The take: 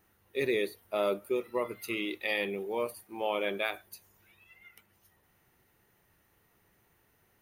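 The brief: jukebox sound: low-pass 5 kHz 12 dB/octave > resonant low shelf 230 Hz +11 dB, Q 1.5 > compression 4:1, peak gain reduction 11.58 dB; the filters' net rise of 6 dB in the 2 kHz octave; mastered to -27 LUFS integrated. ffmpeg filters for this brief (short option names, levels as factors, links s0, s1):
-af "lowpass=5000,lowshelf=f=230:t=q:w=1.5:g=11,equalizer=f=2000:t=o:g=7.5,acompressor=threshold=0.0158:ratio=4,volume=4.47"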